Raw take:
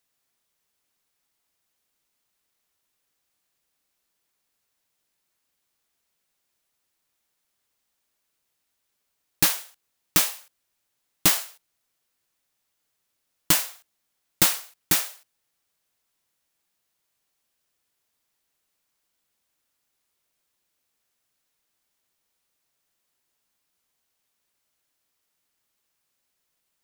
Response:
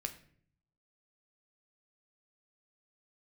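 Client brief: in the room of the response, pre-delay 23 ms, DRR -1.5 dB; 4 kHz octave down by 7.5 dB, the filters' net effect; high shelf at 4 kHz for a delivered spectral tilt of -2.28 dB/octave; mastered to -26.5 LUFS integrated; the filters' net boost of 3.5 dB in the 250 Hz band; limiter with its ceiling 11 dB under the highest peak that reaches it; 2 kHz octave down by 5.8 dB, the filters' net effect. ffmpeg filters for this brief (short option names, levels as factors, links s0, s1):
-filter_complex "[0:a]equalizer=f=250:t=o:g=5.5,equalizer=f=2000:t=o:g=-4.5,highshelf=f=4000:g=-8.5,equalizer=f=4000:t=o:g=-3,alimiter=limit=0.141:level=0:latency=1,asplit=2[s0][s1];[1:a]atrim=start_sample=2205,adelay=23[s2];[s1][s2]afir=irnorm=-1:irlink=0,volume=1.33[s3];[s0][s3]amix=inputs=2:normalize=0,volume=1.5"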